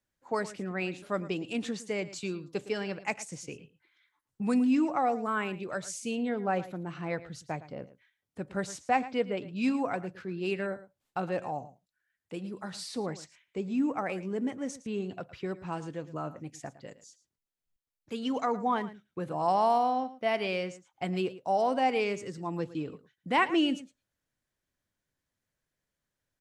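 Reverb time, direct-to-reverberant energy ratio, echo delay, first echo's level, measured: no reverb, no reverb, 111 ms, -16.0 dB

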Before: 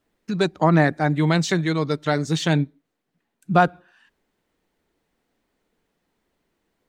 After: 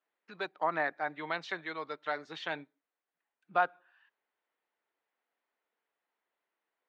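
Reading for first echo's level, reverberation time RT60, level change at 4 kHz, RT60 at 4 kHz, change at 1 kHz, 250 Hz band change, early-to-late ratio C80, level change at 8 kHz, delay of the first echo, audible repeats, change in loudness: no echo, no reverb, -15.0 dB, no reverb, -10.0 dB, -25.5 dB, no reverb, under -25 dB, no echo, no echo, -14.0 dB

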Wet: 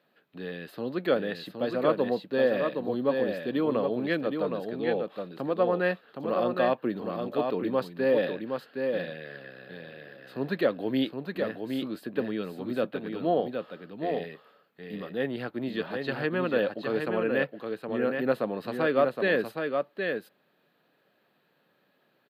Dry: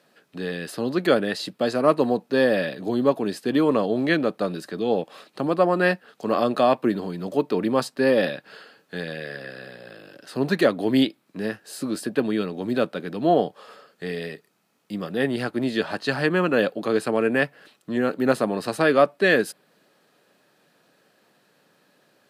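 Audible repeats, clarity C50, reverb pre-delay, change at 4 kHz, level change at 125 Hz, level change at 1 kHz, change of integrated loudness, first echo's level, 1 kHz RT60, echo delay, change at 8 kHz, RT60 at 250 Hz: 1, no reverb, no reverb, -8.0 dB, -7.0 dB, -6.5 dB, -6.0 dB, -5.0 dB, no reverb, 767 ms, under -20 dB, no reverb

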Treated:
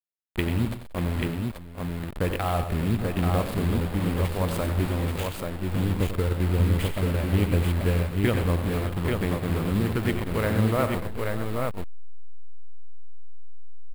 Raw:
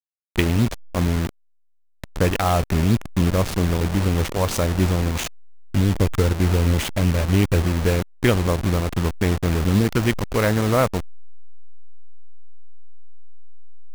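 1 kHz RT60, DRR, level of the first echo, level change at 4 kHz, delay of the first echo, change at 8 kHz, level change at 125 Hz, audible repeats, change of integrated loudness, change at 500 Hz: no reverb, no reverb, -9.5 dB, -7.0 dB, 91 ms, -10.0 dB, -4.5 dB, 6, -5.5 dB, -5.0 dB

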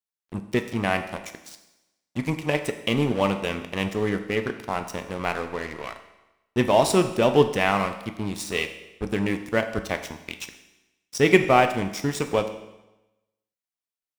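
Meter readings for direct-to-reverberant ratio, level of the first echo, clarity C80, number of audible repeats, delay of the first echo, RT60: 7.5 dB, no echo, 12.5 dB, no echo, no echo, 1.0 s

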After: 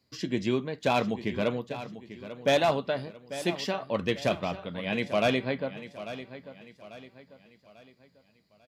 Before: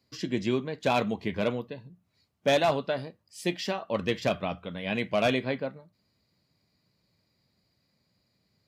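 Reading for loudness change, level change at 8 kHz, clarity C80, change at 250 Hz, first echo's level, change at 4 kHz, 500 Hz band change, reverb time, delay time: -0.5 dB, 0.0 dB, no reverb, 0.0 dB, -13.5 dB, 0.0 dB, 0.0 dB, no reverb, 844 ms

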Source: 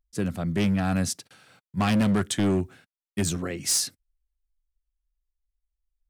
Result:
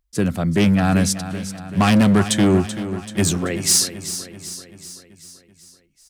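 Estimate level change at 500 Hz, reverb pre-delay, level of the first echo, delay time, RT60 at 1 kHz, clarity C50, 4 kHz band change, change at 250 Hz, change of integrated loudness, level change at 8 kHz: +8.5 dB, no reverb, -12.0 dB, 384 ms, no reverb, no reverb, +8.5 dB, +8.0 dB, +7.0 dB, +8.5 dB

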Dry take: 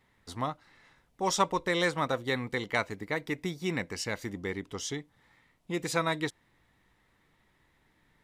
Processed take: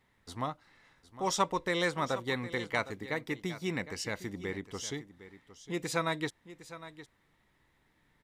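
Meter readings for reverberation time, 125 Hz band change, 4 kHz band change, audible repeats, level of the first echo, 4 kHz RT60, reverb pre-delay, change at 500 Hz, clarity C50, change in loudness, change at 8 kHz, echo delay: no reverb, -2.5 dB, -2.5 dB, 1, -15.0 dB, no reverb, no reverb, -2.5 dB, no reverb, -2.5 dB, -2.5 dB, 759 ms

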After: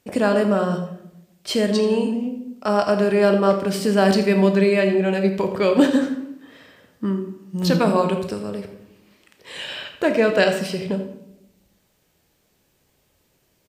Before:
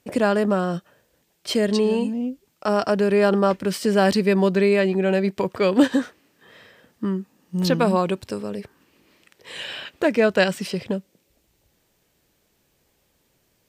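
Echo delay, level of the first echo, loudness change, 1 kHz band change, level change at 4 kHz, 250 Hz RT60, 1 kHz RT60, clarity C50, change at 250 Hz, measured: 83 ms, -14.0 dB, +1.5 dB, +1.0 dB, +1.0 dB, 1.0 s, 0.75 s, 7.5 dB, +1.5 dB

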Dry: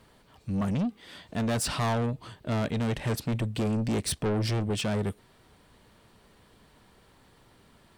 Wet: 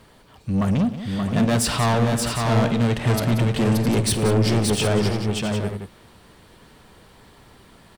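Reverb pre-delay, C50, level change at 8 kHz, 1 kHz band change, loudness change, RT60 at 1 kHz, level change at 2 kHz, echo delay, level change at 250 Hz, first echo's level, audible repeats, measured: no reverb, no reverb, +9.0 dB, +9.0 dB, +8.5 dB, no reverb, +9.0 dB, 52 ms, +9.0 dB, -16.0 dB, 6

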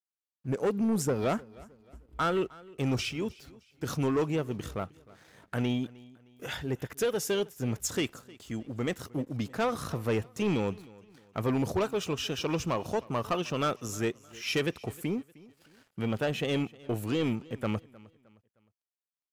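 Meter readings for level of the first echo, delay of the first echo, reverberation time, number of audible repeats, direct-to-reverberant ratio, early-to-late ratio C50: -22.0 dB, 309 ms, no reverb, 2, no reverb, no reverb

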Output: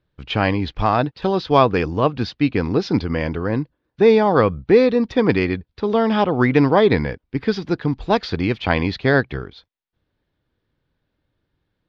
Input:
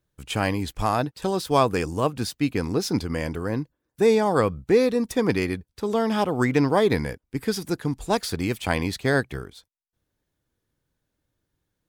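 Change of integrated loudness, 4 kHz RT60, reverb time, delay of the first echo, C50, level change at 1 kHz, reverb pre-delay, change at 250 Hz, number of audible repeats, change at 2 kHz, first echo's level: +5.5 dB, no reverb, no reverb, no echo, no reverb, +5.5 dB, no reverb, +5.5 dB, no echo, +5.5 dB, no echo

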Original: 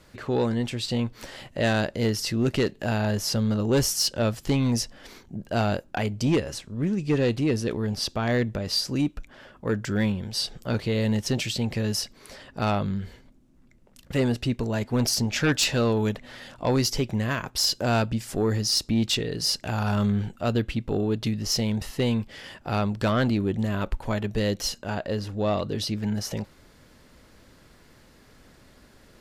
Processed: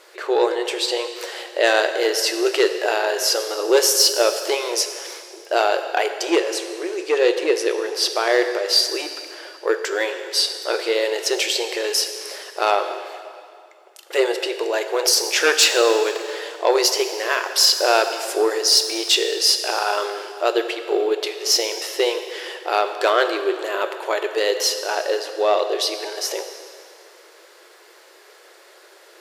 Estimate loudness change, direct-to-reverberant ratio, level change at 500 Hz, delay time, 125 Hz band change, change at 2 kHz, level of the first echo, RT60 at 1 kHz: +6.5 dB, 7.0 dB, +9.0 dB, no echo, under -40 dB, +9.5 dB, no echo, 2.4 s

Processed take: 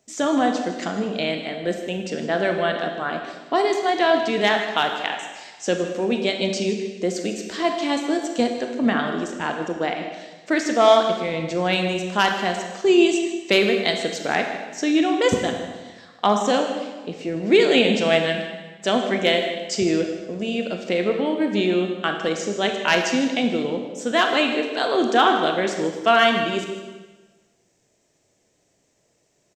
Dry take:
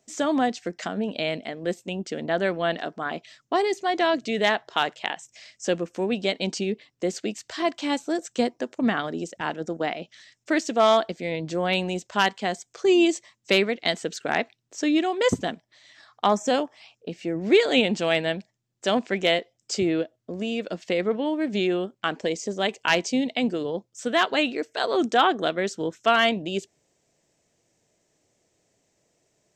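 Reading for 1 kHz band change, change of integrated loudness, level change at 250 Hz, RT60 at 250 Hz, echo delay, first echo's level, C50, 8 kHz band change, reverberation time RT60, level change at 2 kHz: +4.0 dB, +3.5 dB, +3.5 dB, 1.3 s, 156 ms, -14.0 dB, 5.0 dB, +3.5 dB, 1.3 s, +3.5 dB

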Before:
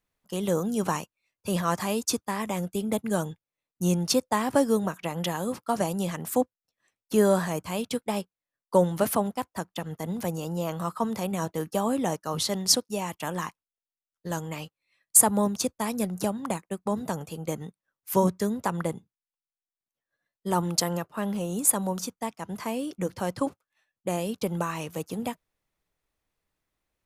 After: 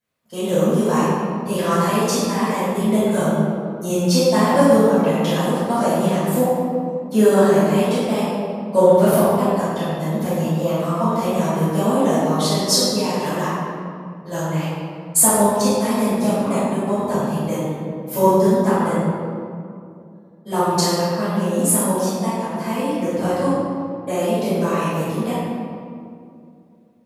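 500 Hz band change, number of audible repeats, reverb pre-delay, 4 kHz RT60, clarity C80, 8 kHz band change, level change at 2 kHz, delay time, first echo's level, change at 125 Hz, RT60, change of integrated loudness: +11.0 dB, no echo, 5 ms, 1.3 s, -2.0 dB, +4.5 dB, +8.5 dB, no echo, no echo, +10.0 dB, 2.4 s, +9.0 dB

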